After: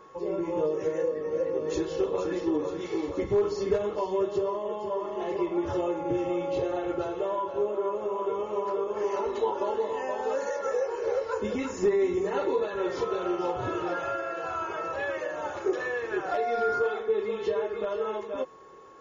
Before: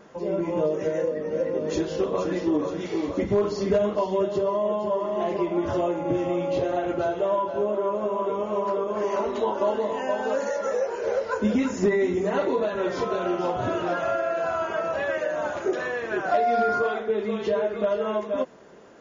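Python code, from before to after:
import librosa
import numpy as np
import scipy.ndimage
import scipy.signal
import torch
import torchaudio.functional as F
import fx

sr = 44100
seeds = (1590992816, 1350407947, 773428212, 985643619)

y = x + 0.6 * np.pad(x, (int(2.3 * sr / 1000.0), 0))[:len(x)]
y = y + 10.0 ** (-46.0 / 20.0) * np.sin(2.0 * np.pi * 1100.0 * np.arange(len(y)) / sr)
y = y * 10.0 ** (-5.0 / 20.0)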